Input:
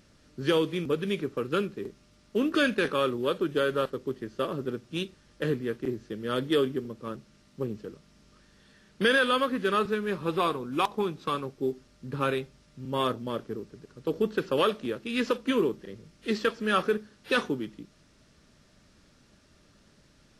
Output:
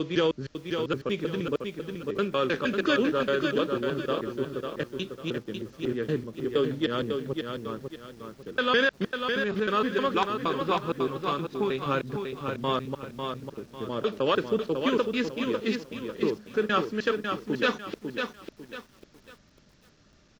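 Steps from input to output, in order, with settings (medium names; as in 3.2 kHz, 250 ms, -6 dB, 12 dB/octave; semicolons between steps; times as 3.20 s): slices played last to first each 156 ms, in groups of 5; resampled via 16 kHz; bit-crushed delay 548 ms, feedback 35%, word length 9-bit, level -5.5 dB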